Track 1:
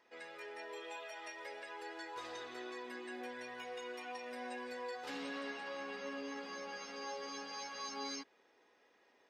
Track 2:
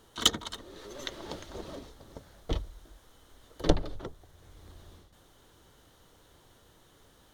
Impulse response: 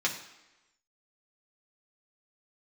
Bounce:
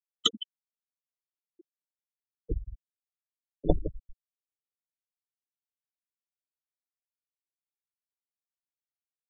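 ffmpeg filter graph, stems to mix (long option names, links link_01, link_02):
-filter_complex "[0:a]aeval=exprs='(mod(141*val(0)+1,2)-1)/141':channel_layout=same,volume=-5dB,asplit=2[link_01][link_02];[link_02]volume=-10dB[link_03];[1:a]volume=-2dB,asplit=3[link_04][link_05][link_06];[link_05]volume=-17.5dB[link_07];[link_06]volume=-9dB[link_08];[2:a]atrim=start_sample=2205[link_09];[link_03][link_07]amix=inputs=2:normalize=0[link_10];[link_10][link_09]afir=irnorm=-1:irlink=0[link_11];[link_08]aecho=0:1:162:1[link_12];[link_01][link_04][link_11][link_12]amix=inputs=4:normalize=0,lowshelf=frequency=420:gain=2,afftfilt=real='re*gte(hypot(re,im),0.126)':imag='im*gte(hypot(re,im),0.126)':win_size=1024:overlap=0.75"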